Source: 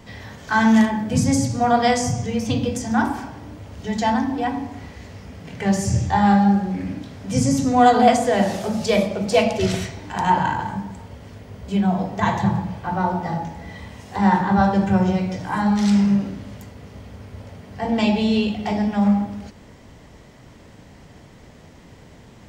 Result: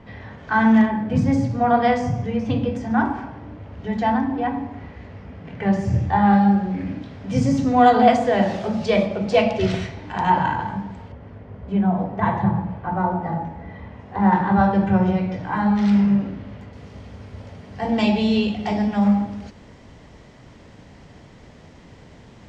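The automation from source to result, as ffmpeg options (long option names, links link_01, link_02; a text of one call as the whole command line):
ffmpeg -i in.wav -af "asetnsamples=nb_out_samples=441:pad=0,asendcmd='6.33 lowpass f 3600;11.12 lowpass f 1700;14.33 lowpass f 2800;16.73 lowpass f 6400',lowpass=2300" out.wav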